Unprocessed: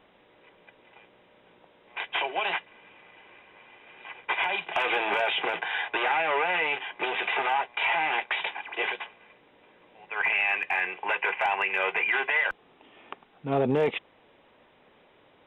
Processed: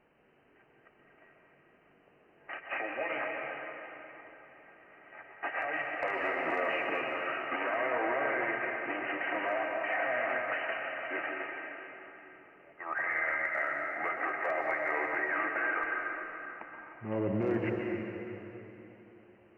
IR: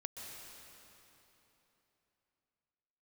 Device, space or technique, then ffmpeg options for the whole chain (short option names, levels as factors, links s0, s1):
slowed and reverbed: -filter_complex "[0:a]asetrate=34839,aresample=44100[s0];[1:a]atrim=start_sample=2205[s1];[s0][s1]afir=irnorm=-1:irlink=0,volume=0.668"